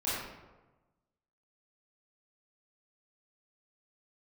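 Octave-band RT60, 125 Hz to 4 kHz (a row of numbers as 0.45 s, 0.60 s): 1.4 s, 1.2 s, 1.2 s, 1.1 s, 0.85 s, 0.65 s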